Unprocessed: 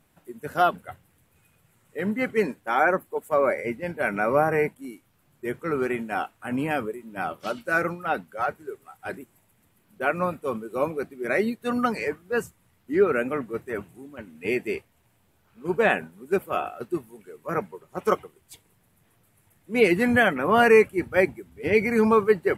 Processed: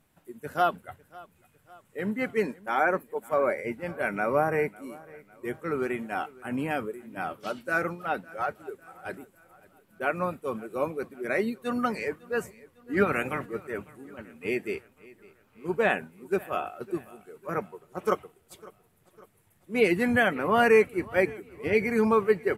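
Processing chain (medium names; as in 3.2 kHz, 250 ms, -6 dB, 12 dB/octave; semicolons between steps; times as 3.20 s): 12.96–13.45 s: spectral peaks clipped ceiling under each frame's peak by 16 dB; on a send: feedback delay 552 ms, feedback 52%, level -22 dB; on the sum: trim -3.5 dB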